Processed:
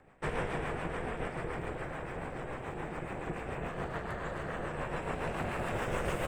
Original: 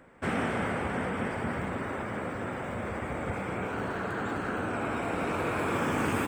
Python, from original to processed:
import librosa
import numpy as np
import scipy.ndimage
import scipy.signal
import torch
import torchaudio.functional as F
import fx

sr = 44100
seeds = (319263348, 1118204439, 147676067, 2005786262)

y = fx.rotary(x, sr, hz=7.0)
y = y * np.sin(2.0 * np.pi * 250.0 * np.arange(len(y)) / sr)
y = fx.peak_eq(y, sr, hz=150.0, db=3.0, octaves=0.34)